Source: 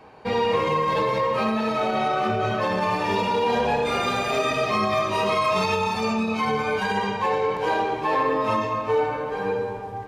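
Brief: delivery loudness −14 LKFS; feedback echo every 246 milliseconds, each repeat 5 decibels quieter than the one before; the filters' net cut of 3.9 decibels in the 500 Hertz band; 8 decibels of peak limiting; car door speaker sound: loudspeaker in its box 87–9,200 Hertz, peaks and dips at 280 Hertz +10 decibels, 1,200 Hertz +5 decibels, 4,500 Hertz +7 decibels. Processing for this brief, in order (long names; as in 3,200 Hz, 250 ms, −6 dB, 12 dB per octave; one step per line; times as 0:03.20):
parametric band 500 Hz −5.5 dB
brickwall limiter −20.5 dBFS
loudspeaker in its box 87–9,200 Hz, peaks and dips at 280 Hz +10 dB, 1,200 Hz +5 dB, 4,500 Hz +7 dB
repeating echo 246 ms, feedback 56%, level −5 dB
level +11 dB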